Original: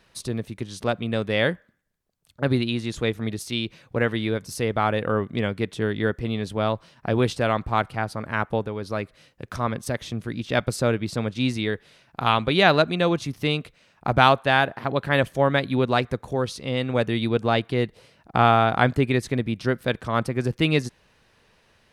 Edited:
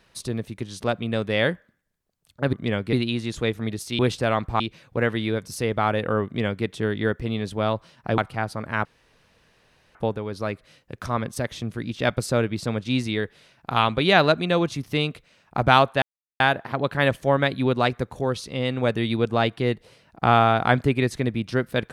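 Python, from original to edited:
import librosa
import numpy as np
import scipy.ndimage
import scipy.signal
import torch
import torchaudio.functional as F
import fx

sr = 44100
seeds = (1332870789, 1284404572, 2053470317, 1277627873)

y = fx.edit(x, sr, fx.duplicate(start_s=5.24, length_s=0.4, to_s=2.53),
    fx.move(start_s=7.17, length_s=0.61, to_s=3.59),
    fx.insert_room_tone(at_s=8.45, length_s=1.1),
    fx.insert_silence(at_s=14.52, length_s=0.38), tone=tone)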